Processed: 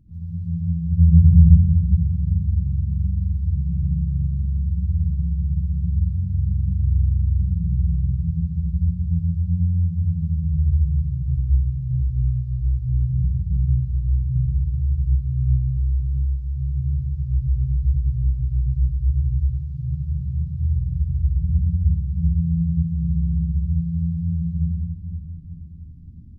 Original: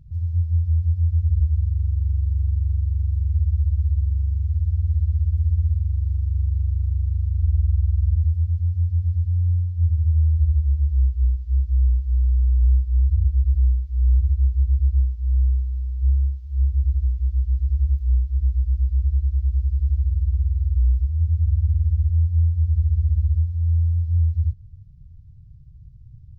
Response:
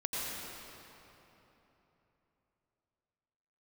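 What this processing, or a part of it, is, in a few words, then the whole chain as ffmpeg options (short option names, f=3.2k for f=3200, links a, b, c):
shimmer-style reverb: -filter_complex "[0:a]asplit=3[a][b][c];[a]afade=t=out:st=0.92:d=0.02[d];[b]aemphasis=mode=reproduction:type=bsi,afade=t=in:st=0.92:d=0.02,afade=t=out:st=1.34:d=0.02[e];[c]afade=t=in:st=1.34:d=0.02[f];[d][e][f]amix=inputs=3:normalize=0,asplit=2[g][h];[h]asetrate=88200,aresample=44100,atempo=0.5,volume=-8dB[i];[g][i]amix=inputs=2:normalize=0[j];[1:a]atrim=start_sample=2205[k];[j][k]afir=irnorm=-1:irlink=0,volume=-7dB"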